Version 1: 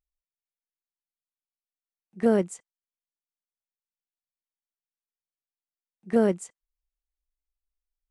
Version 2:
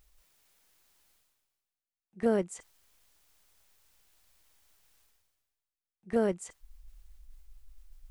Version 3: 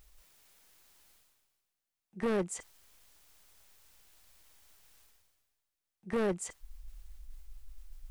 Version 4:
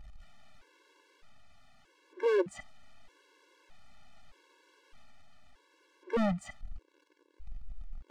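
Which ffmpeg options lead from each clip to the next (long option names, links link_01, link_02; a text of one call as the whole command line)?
ffmpeg -i in.wav -af "areverse,acompressor=mode=upward:threshold=-39dB:ratio=2.5,areverse,asubboost=boost=6:cutoff=78,volume=-4dB" out.wav
ffmpeg -i in.wav -af "asoftclip=type=tanh:threshold=-31dB,volume=4.5dB" out.wav
ffmpeg -i in.wav -af "aeval=exprs='val(0)+0.5*0.00299*sgn(val(0))':channel_layout=same,adynamicsmooth=sensitivity=4:basefreq=2900,afftfilt=real='re*gt(sin(2*PI*0.81*pts/sr)*(1-2*mod(floor(b*sr/1024/290),2)),0)':imag='im*gt(sin(2*PI*0.81*pts/sr)*(1-2*mod(floor(b*sr/1024/290),2)),0)':win_size=1024:overlap=0.75,volume=5.5dB" out.wav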